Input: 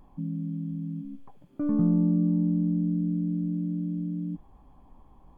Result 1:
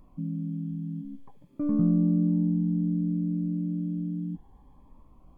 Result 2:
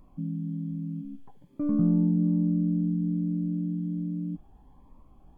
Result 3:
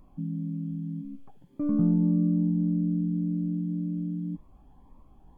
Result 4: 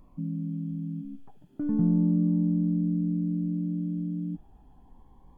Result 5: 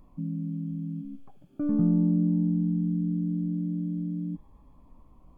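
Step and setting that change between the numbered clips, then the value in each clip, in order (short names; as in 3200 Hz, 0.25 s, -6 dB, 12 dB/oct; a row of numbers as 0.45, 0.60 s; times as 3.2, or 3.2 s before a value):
cascading phaser, rate: 0.59, 1.2, 1.8, 0.32, 0.2 Hz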